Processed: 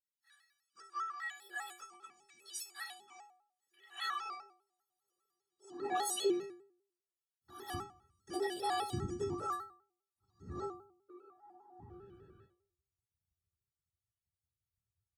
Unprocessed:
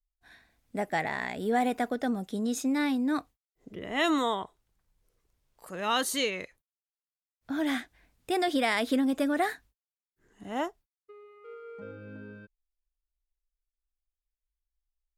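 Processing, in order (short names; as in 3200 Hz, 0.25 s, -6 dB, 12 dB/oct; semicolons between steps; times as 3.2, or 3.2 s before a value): trilling pitch shifter -7.5 st, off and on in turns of 0.595 s; resonant low shelf 170 Hz +10 dB, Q 3; fixed phaser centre 430 Hz, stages 8; de-hum 173.8 Hz, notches 7; whisperiser; high-pass sweep 1900 Hz -> 87 Hz, 3.9–7.11; metallic resonator 370 Hz, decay 0.62 s, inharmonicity 0.03; on a send: echo 73 ms -16 dB; on the sum: shaped vibrato square 5 Hz, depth 100 cents; gain +14.5 dB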